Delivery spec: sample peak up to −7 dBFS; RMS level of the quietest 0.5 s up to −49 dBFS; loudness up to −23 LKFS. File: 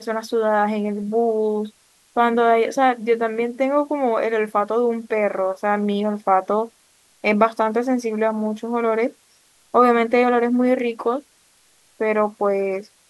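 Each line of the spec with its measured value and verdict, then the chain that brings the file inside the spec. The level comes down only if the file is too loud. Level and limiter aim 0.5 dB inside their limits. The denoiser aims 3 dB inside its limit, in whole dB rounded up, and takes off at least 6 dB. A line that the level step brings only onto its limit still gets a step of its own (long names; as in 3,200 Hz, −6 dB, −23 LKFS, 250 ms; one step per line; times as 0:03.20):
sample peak −2.5 dBFS: out of spec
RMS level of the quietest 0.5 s −58 dBFS: in spec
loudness −20.5 LKFS: out of spec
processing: level −3 dB
brickwall limiter −7.5 dBFS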